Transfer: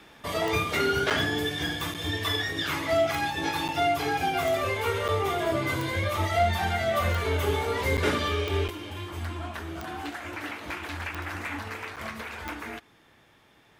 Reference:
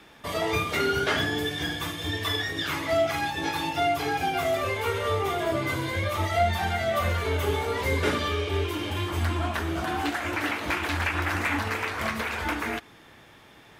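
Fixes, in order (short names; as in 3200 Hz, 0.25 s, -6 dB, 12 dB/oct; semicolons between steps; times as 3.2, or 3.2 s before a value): clip repair -16 dBFS; de-click; interpolate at 1.1/1.94/3.68/5.08/7.97/8.68/11.96, 7.3 ms; gain correction +7.5 dB, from 8.7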